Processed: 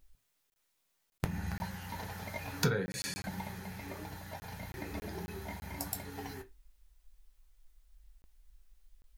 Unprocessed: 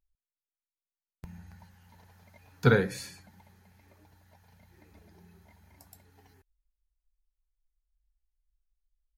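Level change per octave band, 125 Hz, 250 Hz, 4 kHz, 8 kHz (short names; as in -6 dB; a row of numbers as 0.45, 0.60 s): -4.5, -3.5, +3.0, +7.0 dB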